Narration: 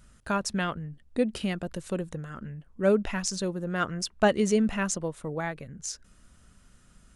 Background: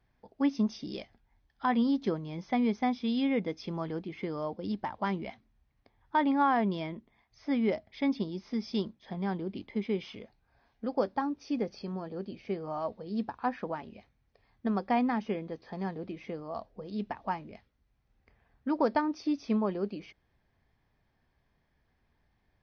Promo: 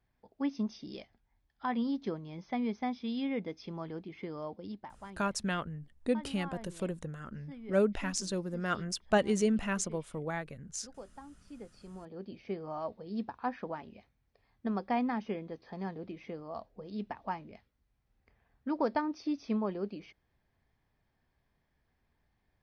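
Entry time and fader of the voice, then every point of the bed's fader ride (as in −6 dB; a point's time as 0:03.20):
4.90 s, −4.5 dB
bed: 0:04.54 −5.5 dB
0:05.21 −19 dB
0:11.42 −19 dB
0:12.34 −3.5 dB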